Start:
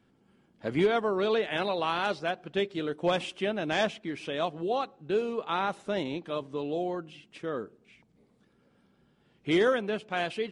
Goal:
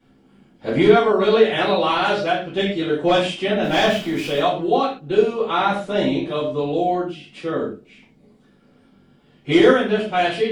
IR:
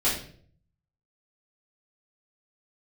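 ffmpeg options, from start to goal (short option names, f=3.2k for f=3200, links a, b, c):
-filter_complex "[0:a]asettb=1/sr,asplit=3[a][b][c];[a]atrim=end=3.634[d];[b]atrim=start=3.63:end=4.39,asetpts=PTS-STARTPTS,afade=t=in:d=0.004:c=qsin,afade=t=out:st=0.756:d=0.004:c=qsin,aeval=exprs='val(0)+0.5*0.00794*sgn(val(0))':c=same[e];[c]atrim=start=4.386[f];[d][e]acrossfade=d=0.004:c1=hsin:c2=qsin[g];[g][f]acrossfade=d=0.004:c1=qsin:c2=hsin[h];[1:a]atrim=start_sample=2205,atrim=end_sample=6615[i];[h][i]afir=irnorm=-1:irlink=0,volume=-1.5dB"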